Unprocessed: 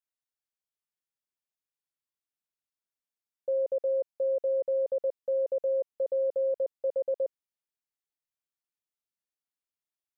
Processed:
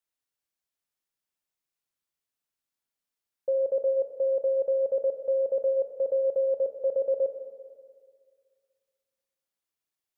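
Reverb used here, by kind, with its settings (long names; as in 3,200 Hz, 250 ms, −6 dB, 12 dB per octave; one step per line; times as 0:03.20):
four-comb reverb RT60 2 s, combs from 27 ms, DRR 5 dB
level +3 dB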